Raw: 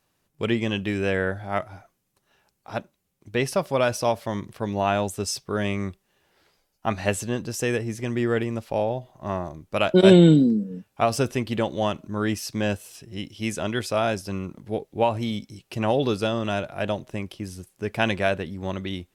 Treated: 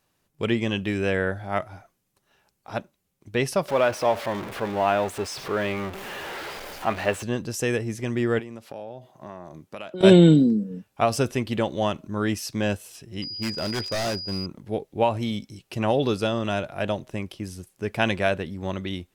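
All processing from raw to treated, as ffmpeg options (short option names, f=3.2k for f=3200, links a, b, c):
-filter_complex "[0:a]asettb=1/sr,asplit=3[a][b][c];[a]atrim=end=3.684[d];[b]atrim=start=3.68:end=7.23,asetpts=PTS-STARTPTS,afade=t=in:d=0.004:c=qsin,afade=t=out:st=3.546:d=0.004:c=qsin,aeval=exprs='val(0)+0.5*0.0501*sgn(val(0))':c=same,bass=f=250:g=-10,treble=f=4k:g=-13[e];[c]atrim=start=7.226[f];[d][e]acrossfade=d=0.004:c1=hsin:c2=qsin[g];[g][f]acrossfade=d=0.004:c1=qsin:c2=hsin,asettb=1/sr,asplit=3[h][i][j];[h]atrim=end=8.394[k];[i]atrim=start=8.39:end=10.01,asetpts=PTS-STARTPTS,afade=t=in:d=0.004:c=qsin,afade=t=out:st=1.616:d=0.004:c=qsin,highpass=140,acompressor=threshold=-35dB:ratio=4:attack=3.2:release=140:knee=1:detection=peak[l];[j]atrim=start=10.006[m];[k][l]acrossfade=d=0.004:c1=hsin:c2=qsin[n];[n][m]acrossfade=d=0.004:c1=qsin:c2=hsin,asettb=1/sr,asplit=3[o][p][q];[o]atrim=end=13.224[r];[p]atrim=start=13.22:end=14.46,asetpts=PTS-STARTPTS,afade=t=in:d=0.004:c=qsin,afade=t=out:st=1.236:d=0.004:c=qsin,adynamicsmooth=sensitivity=5:basefreq=1.1k,aeval=exprs='val(0)+0.0251*sin(2*PI*4900*n/s)':c=same,aeval=exprs='0.0891*(abs(mod(val(0)/0.0891+3,4)-2)-1)':c=same[s];[q]atrim=start=14.456[t];[r][s]acrossfade=d=0.004:c1=hsin:c2=qsin[u];[u][t]acrossfade=d=0.004:c1=qsin:c2=hsin"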